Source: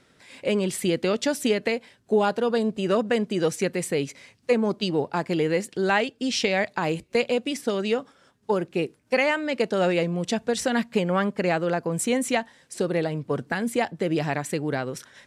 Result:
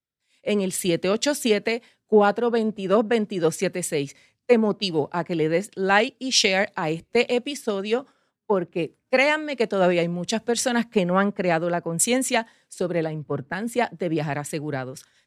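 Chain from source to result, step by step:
multiband upward and downward expander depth 100%
level +1.5 dB

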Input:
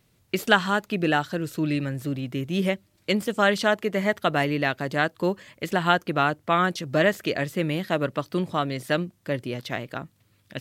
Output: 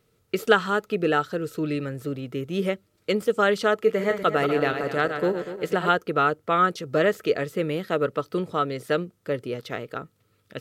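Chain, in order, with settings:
0:03.75–0:05.89: feedback delay that plays each chunk backwards 121 ms, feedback 59%, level −7.5 dB
hollow resonant body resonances 450/1,300 Hz, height 13 dB, ringing for 35 ms
level −4 dB

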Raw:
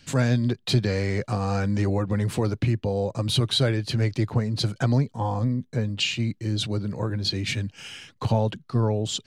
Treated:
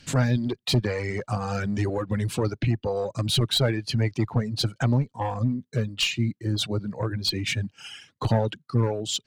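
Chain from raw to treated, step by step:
asymmetric clip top −23 dBFS, bottom −13 dBFS
reverb reduction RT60 2 s
level +2 dB

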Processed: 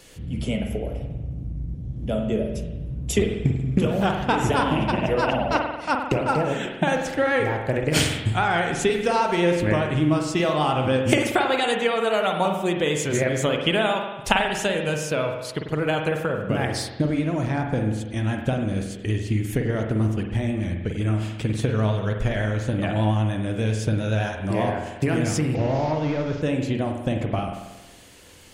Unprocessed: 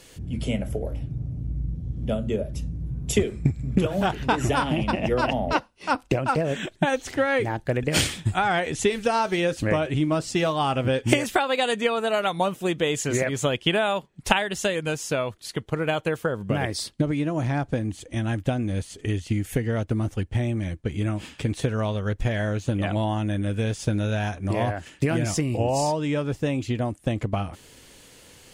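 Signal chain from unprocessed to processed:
0:25.55–0:26.42: linear delta modulator 32 kbit/s, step −41 dBFS
spring reverb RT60 1.1 s, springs 46 ms, chirp 65 ms, DRR 3 dB
pitch vibrato 10 Hz 27 cents

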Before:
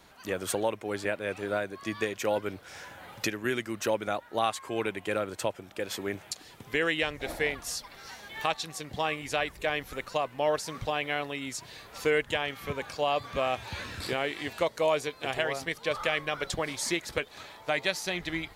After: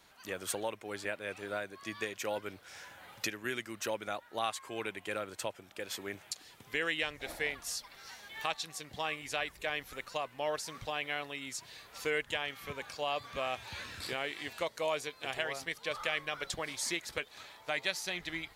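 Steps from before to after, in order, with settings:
tilt shelving filter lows −3.5 dB
level −6.5 dB

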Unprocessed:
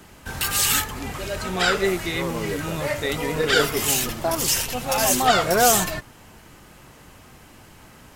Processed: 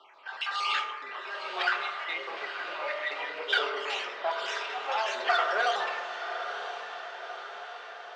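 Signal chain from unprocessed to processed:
time-frequency cells dropped at random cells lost 36%
low-pass filter 3,900 Hz 24 dB per octave
spectral tilt −2 dB per octave
on a send: feedback delay with all-pass diffusion 953 ms, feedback 57%, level −10 dB
on the sum: convolution reverb RT60 1.4 s, pre-delay 3 ms, DRR 3 dB
in parallel at −4 dB: soft clipping −17.5 dBFS, distortion −11 dB
on the sum: Bessel high-pass filter 1,000 Hz, order 4
level −4.5 dB

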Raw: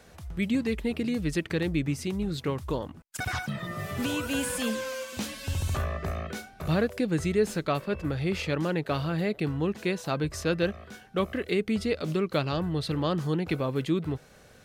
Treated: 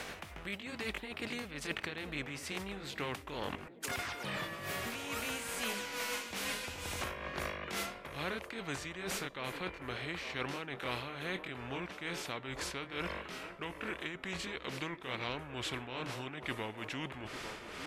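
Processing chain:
pitch glide at a constant tempo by +3.5 semitones ending unshifted
parametric band 2,800 Hz +8 dB 0.91 octaves
reversed playback
downward compressor, threshold −37 dBFS, peak gain reduction 15.5 dB
reversed playback
bass and treble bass −8 dB, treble −10 dB
tuned comb filter 240 Hz, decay 0.66 s, mix 30%
amplitude tremolo 2.8 Hz, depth 72%
speed change −18%
on a send: delay with a band-pass on its return 846 ms, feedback 41%, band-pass 520 Hz, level −13.5 dB
on the sum: every bin compressed towards the loudest bin 2 to 1
level +8.5 dB

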